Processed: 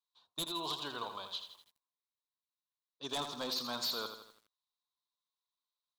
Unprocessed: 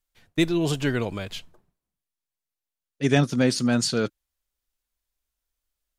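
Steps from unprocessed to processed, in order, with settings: double band-pass 2000 Hz, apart 1.9 oct; in parallel at -8 dB: hard clip -35 dBFS, distortion -10 dB; on the sum: dynamic EQ 1900 Hz, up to +3 dB, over -49 dBFS, Q 1.2; wavefolder -30 dBFS; lo-fi delay 82 ms, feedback 55%, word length 10-bit, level -8 dB

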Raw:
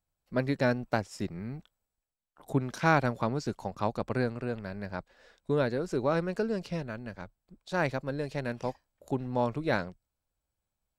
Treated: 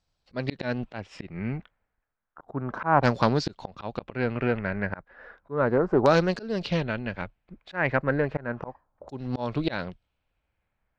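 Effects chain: LFO low-pass saw down 0.33 Hz 980–5100 Hz; auto swell 0.256 s; Doppler distortion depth 0.2 ms; gain +8 dB

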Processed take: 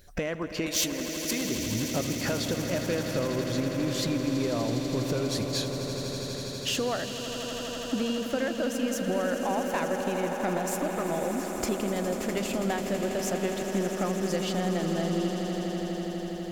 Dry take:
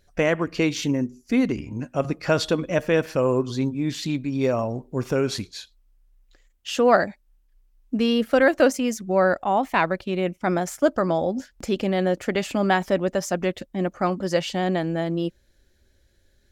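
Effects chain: compressor 10:1, threshold -33 dBFS, peak gain reduction 21.5 dB; 0.66–1.45 RIAA curve recording; soft clip -27 dBFS, distortion -19 dB; high shelf 11000 Hz +9.5 dB; swelling echo 82 ms, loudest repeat 8, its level -12 dB; gain +6.5 dB

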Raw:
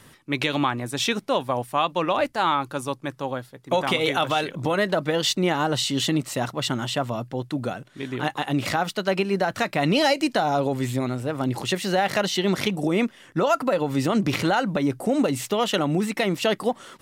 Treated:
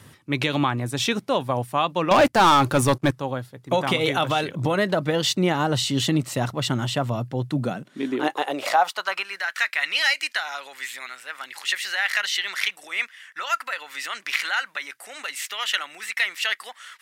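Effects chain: high-pass sweep 94 Hz -> 1800 Hz, 7.35–9.41; 2.11–3.11 sample leveller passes 3

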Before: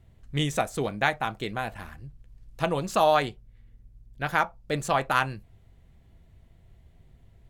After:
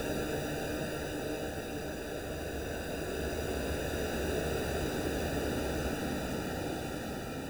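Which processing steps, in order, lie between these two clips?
high-pass sweep 1700 Hz -> 240 Hz, 4.5–5.08; sample-and-hold 41×; Paulstretch 7.6×, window 1.00 s, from 4.38; gain -8.5 dB

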